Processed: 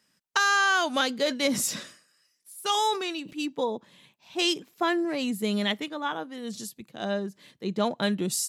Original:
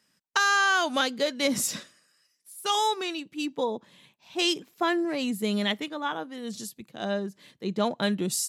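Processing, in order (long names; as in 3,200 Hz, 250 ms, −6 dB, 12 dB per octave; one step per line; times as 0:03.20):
0:00.94–0:03.33: level that may fall only so fast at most 110 dB per second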